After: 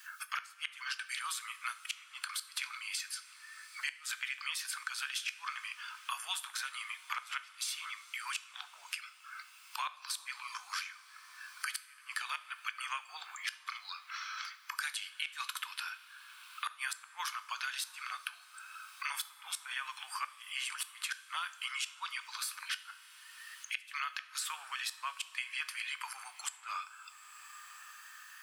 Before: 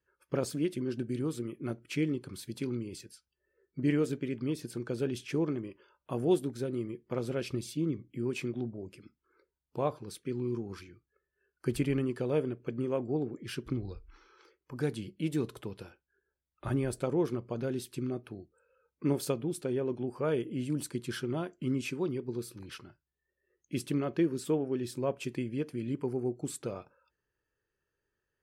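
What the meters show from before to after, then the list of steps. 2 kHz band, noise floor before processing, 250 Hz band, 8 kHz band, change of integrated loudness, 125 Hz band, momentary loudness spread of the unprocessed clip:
+9.0 dB, under -85 dBFS, under -40 dB, +6.0 dB, -5.5 dB, under -40 dB, 13 LU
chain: steep high-pass 1100 Hz 48 dB/oct; flipped gate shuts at -33 dBFS, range -34 dB; compressor 2:1, threshold -52 dBFS, peak gain reduction 6.5 dB; two-slope reverb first 0.49 s, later 4.9 s, from -18 dB, DRR 11 dB; three-band squash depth 70%; gain +15.5 dB

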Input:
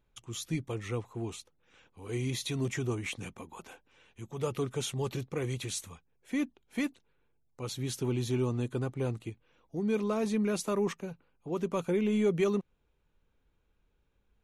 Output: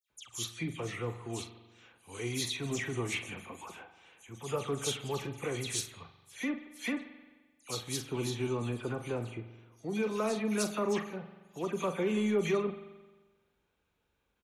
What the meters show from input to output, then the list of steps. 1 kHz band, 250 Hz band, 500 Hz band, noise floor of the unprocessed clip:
+1.5 dB, -3.0 dB, -1.5 dB, -74 dBFS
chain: HPF 60 Hz; low shelf 360 Hz -8 dB; dispersion lows, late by 0.104 s, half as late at 2900 Hz; in parallel at -10 dB: soft clip -31 dBFS, distortion -13 dB; on the sum: doubler 42 ms -10.5 dB; spring tank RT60 1.3 s, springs 43 ms, chirp 30 ms, DRR 10.5 dB

